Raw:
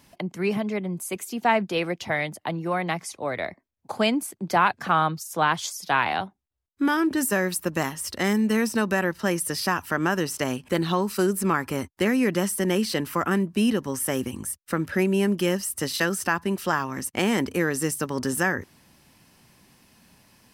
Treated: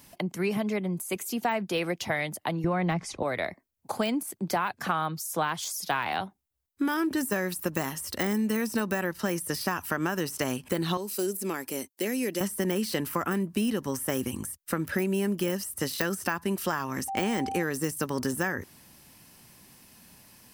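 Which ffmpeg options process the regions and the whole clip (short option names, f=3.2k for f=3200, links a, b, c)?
-filter_complex "[0:a]asettb=1/sr,asplit=3[a][b][c];[a]atrim=end=2.644[d];[b]atrim=start=2.64:end=3.23,asetpts=PTS-STARTPTS,afade=t=in:d=0.004:c=qsin,afade=t=out:st=0.586:d=0.004:c=qsin,aemphasis=mode=reproduction:type=bsi,acontrast=22,lowpass=8.5k[e];[c]atrim=start=3.226[f];[d][e]acrossfade=d=0.004:c1=hsin:c2=qsin[g];[g][f]acrossfade=d=0.004:c1=qsin:c2=hsin,asettb=1/sr,asplit=3[h][i][j];[h]atrim=end=10.974[k];[i]atrim=start=10.97:end=12.41,asetpts=PTS-STARTPTS,afade=t=in:d=0.004:c=qsin,afade=t=out:st=1.436:d=0.004:c=qsin,highpass=340,deesser=0.55,equalizer=f=1.2k:w=0.85:g=-14[l];[j]atrim=start=12.406[m];[k][l]acrossfade=d=0.004:c1=hsin:c2=qsin[n];[n][m]acrossfade=d=0.004:c1=qsin:c2=hsin,asettb=1/sr,asplit=3[o][p][q];[o]atrim=end=17.084[r];[p]atrim=start=17.08:end=17.63,asetpts=PTS-STARTPTS,afade=t=in:d=0.004:c=qsin,afade=t=out:st=0.546:d=0.004:c=qsin,lowpass=8.7k,aeval=exprs='val(0)+0.0316*sin(2*PI*780*n/s)':c=same[s];[q]atrim=start=17.626[t];[r][s]acrossfade=d=0.004:c1=hsin:c2=qsin[u];[u][t]acrossfade=d=0.004:c1=qsin:c2=hsin,deesser=0.7,highshelf=f=8.5k:g=11.5,acompressor=threshold=-24dB:ratio=6"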